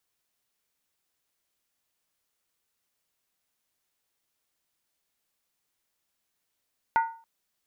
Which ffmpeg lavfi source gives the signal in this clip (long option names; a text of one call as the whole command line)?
ffmpeg -f lavfi -i "aevalsrc='0.141*pow(10,-3*t/0.41)*sin(2*PI*912*t)+0.0562*pow(10,-3*t/0.325)*sin(2*PI*1453.7*t)+0.0224*pow(10,-3*t/0.281)*sin(2*PI*1948*t)+0.00891*pow(10,-3*t/0.271)*sin(2*PI*2094*t)+0.00355*pow(10,-3*t/0.252)*sin(2*PI*2419.5*t)':duration=0.28:sample_rate=44100" out.wav